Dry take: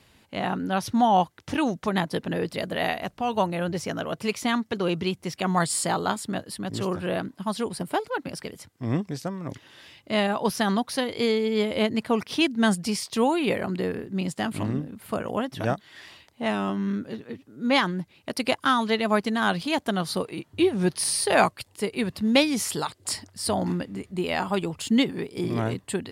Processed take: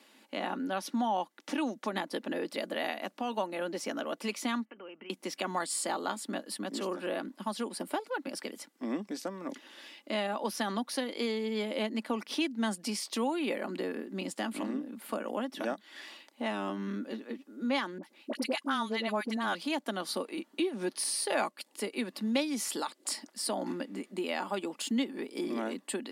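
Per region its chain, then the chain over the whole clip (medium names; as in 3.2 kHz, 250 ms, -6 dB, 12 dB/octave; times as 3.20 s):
4.65–5.10 s: Chebyshev low-pass 3.1 kHz, order 10 + bass shelf 420 Hz -9 dB + compression 10:1, threshold -42 dBFS
17.98–19.55 s: brick-wall FIR high-pass 170 Hz + phase dispersion highs, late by 55 ms, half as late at 930 Hz
whole clip: steep high-pass 210 Hz 48 dB/octave; comb 3.5 ms, depth 30%; compression 2:1, threshold -33 dBFS; trim -1.5 dB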